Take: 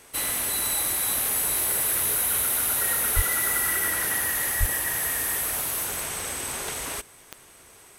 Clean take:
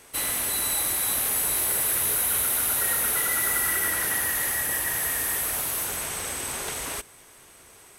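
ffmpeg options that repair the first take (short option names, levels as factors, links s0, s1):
-filter_complex "[0:a]adeclick=t=4,asplit=3[s0][s1][s2];[s0]afade=t=out:st=3.15:d=0.02[s3];[s1]highpass=f=140:w=0.5412,highpass=f=140:w=1.3066,afade=t=in:st=3.15:d=0.02,afade=t=out:st=3.27:d=0.02[s4];[s2]afade=t=in:st=3.27:d=0.02[s5];[s3][s4][s5]amix=inputs=3:normalize=0,asplit=3[s6][s7][s8];[s6]afade=t=out:st=4.59:d=0.02[s9];[s7]highpass=f=140:w=0.5412,highpass=f=140:w=1.3066,afade=t=in:st=4.59:d=0.02,afade=t=out:st=4.71:d=0.02[s10];[s8]afade=t=in:st=4.71:d=0.02[s11];[s9][s10][s11]amix=inputs=3:normalize=0"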